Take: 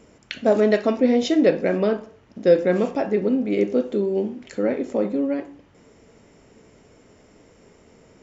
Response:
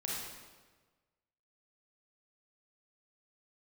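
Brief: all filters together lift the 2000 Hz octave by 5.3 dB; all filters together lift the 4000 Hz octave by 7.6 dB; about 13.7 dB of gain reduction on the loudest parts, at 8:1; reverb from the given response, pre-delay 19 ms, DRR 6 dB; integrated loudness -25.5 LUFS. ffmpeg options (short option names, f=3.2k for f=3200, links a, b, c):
-filter_complex "[0:a]equalizer=f=2k:t=o:g=4.5,equalizer=f=4k:t=o:g=8,acompressor=threshold=-25dB:ratio=8,asplit=2[a][b];[1:a]atrim=start_sample=2205,adelay=19[c];[b][c]afir=irnorm=-1:irlink=0,volume=-8.5dB[d];[a][d]amix=inputs=2:normalize=0,volume=3.5dB"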